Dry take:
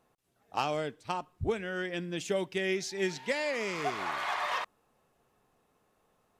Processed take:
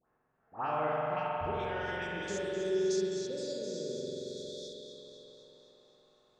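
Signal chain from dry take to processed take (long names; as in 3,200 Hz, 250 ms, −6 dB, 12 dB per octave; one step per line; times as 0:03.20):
spectrum averaged block by block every 50 ms
0:01.51–0:02.08: Bessel high-pass filter 350 Hz
0:02.16–0:04.80: time-frequency box erased 590–3,300 Hz
all-pass dispersion highs, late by 93 ms, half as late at 1,600 Hz
low-pass filter sweep 1,600 Hz → 6,800 Hz, 0:00.91–0:02.06
delay that swaps between a low-pass and a high-pass 127 ms, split 2,200 Hz, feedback 77%, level −7 dB
spring reverb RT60 3.6 s, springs 45 ms, chirp 30 ms, DRR −4 dB
level −7 dB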